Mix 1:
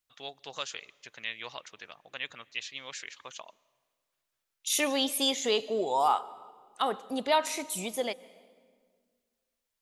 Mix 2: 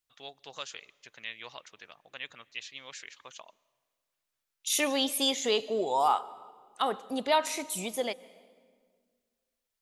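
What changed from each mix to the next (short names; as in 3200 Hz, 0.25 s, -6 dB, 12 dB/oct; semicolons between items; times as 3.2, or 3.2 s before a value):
first voice -3.5 dB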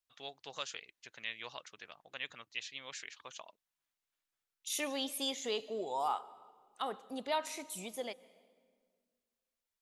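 first voice: send off; second voice -9.0 dB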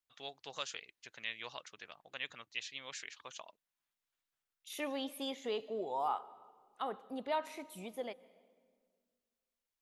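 second voice: add bell 7200 Hz -14.5 dB 1.8 oct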